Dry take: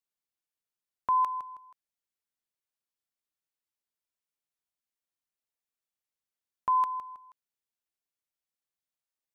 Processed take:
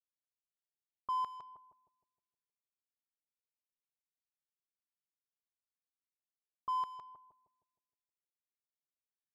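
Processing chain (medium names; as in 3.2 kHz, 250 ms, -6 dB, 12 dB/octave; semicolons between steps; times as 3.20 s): median filter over 15 samples; bucket-brigade echo 156 ms, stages 1024, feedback 51%, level -7 dB; level-controlled noise filter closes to 550 Hz, open at -27 dBFS; trim -9 dB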